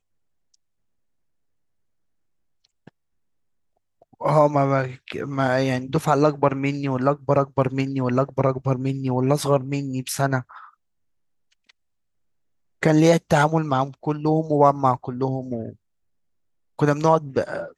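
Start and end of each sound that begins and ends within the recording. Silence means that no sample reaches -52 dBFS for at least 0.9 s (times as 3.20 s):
2.65–2.89 s
4.02–11.71 s
12.82–15.76 s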